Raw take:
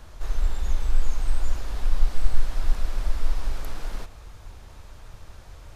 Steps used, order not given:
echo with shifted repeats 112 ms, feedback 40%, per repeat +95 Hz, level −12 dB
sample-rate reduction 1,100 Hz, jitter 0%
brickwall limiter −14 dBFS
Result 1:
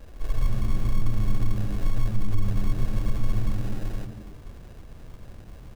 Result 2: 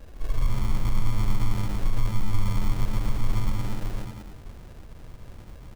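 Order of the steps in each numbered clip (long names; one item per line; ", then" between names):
sample-rate reduction, then brickwall limiter, then echo with shifted repeats
brickwall limiter, then echo with shifted repeats, then sample-rate reduction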